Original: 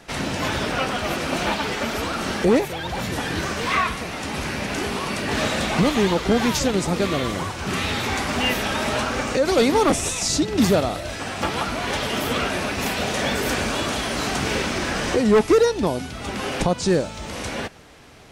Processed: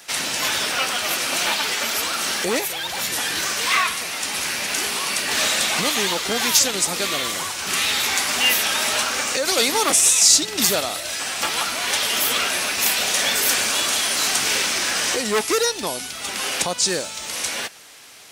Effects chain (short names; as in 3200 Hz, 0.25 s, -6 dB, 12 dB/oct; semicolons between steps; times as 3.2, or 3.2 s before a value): tilt +4.5 dB/oct; short-mantissa float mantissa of 4-bit; gain -1 dB